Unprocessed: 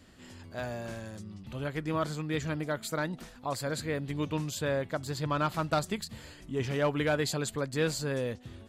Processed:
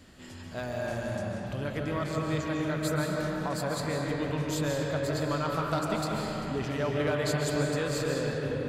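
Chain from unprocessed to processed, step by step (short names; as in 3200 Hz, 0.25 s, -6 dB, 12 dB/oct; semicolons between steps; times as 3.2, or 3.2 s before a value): compressor 2:1, threshold -37 dBFS, peak gain reduction 8 dB; reverb RT60 4.5 s, pre-delay 0.105 s, DRR -2 dB; gain +3 dB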